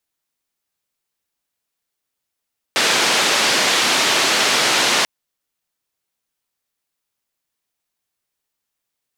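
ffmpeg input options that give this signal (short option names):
-f lavfi -i "anoisesrc=c=white:d=2.29:r=44100:seed=1,highpass=f=240,lowpass=f=4800,volume=-5.2dB"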